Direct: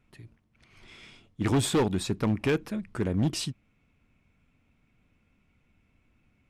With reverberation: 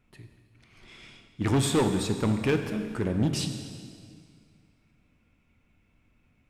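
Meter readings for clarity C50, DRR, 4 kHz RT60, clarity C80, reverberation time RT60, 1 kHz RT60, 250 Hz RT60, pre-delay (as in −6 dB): 7.0 dB, 5.5 dB, 1.9 s, 8.0 dB, 2.1 s, 2.0 s, 2.3 s, 14 ms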